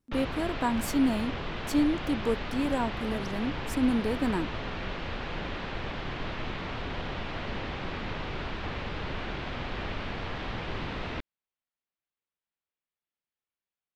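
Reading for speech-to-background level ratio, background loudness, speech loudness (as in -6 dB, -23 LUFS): 6.0 dB, -36.0 LUFS, -30.0 LUFS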